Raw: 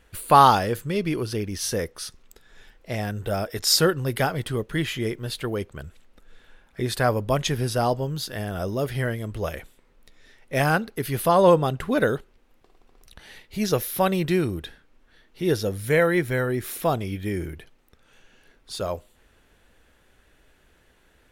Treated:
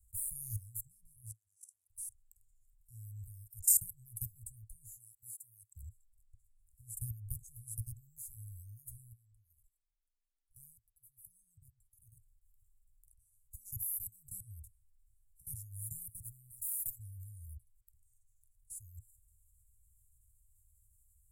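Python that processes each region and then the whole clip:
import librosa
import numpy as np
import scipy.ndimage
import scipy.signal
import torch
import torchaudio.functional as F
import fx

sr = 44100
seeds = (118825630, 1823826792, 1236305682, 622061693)

y = fx.chain(x, sr, fx.level_steps(step_db=20),
    fx.bandpass_edges(low_hz=680.0, high_hz=7600.0),
    fx.doppler_dist(depth_ms=0.13), at=(1.31, 1.9))
y = fx.chain(y, sr, fx.highpass(hz=310.0, slope=12),
    fx.low_shelf(hz=430.0, db=-3.5), at=(4.96, 5.76))
y = fx.chain(y, sr, fx.comb(ms=6.2, depth=0.42),
    fx.level_steps(step_db=22), at=(9.12, 12.12))
y = fx.chain(y, sr, fx.high_shelf(hz=3300.0, db=11.5),
    fx.comb(ms=4.3, depth=0.74),
    fx.power_curve(exponent=1.4), at=(16.5, 16.99))
y = fx.level_steps(y, sr, step_db=21)
y = scipy.signal.sosfilt(scipy.signal.cheby1(5, 1.0, [110.0, 7500.0], 'bandstop', fs=sr, output='sos'), y)
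y = fx.high_shelf(y, sr, hz=4700.0, db=8.0)
y = y * librosa.db_to_amplitude(-2.0)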